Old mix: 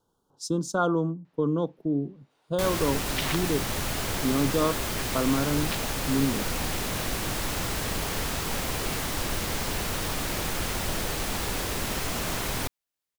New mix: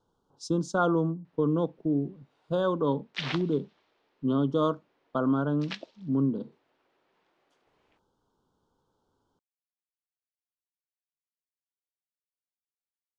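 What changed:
first sound: muted
master: add high-frequency loss of the air 89 metres

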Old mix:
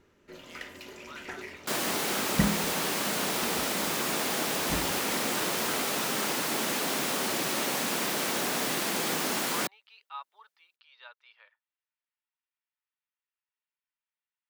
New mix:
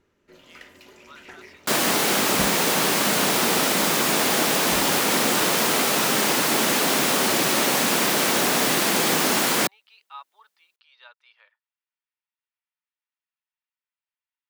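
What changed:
speech: remove high-frequency loss of the air 59 metres
first sound −4.0 dB
second sound +9.0 dB

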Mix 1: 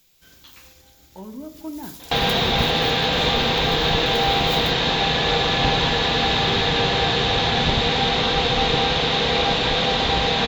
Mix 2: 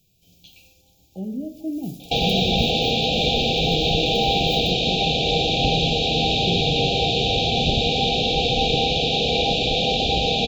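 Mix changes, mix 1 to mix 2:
speech: add parametric band 140 Hz +12 dB 1.9 octaves
first sound −6.5 dB
master: add linear-phase brick-wall band-stop 820–2,300 Hz

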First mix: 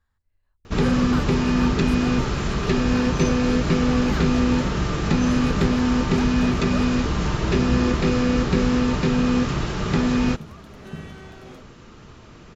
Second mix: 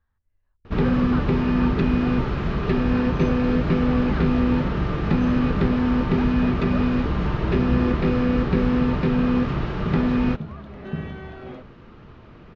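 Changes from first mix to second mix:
second sound +6.5 dB
master: add high-frequency loss of the air 310 metres

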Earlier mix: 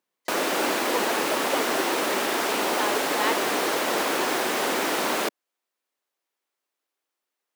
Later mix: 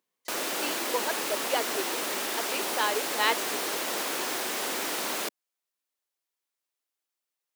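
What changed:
background −9.5 dB
master: add high-shelf EQ 2,900 Hz +9.5 dB

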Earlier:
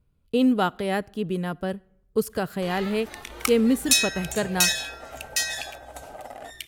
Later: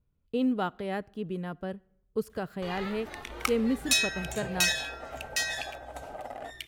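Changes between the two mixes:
speech −7.0 dB
master: add parametric band 12,000 Hz −9.5 dB 2.1 octaves

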